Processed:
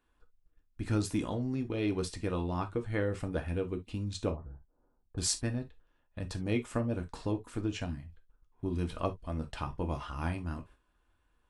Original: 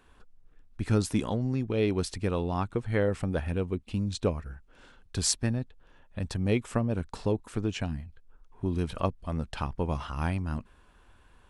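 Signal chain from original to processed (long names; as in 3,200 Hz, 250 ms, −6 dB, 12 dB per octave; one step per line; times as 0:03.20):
noise gate −49 dBFS, range −11 dB
0:04.30–0:05.18: Chebyshev low-pass filter 900 Hz, order 3
reverb whose tail is shaped and stops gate 90 ms falling, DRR 5 dB
level −5 dB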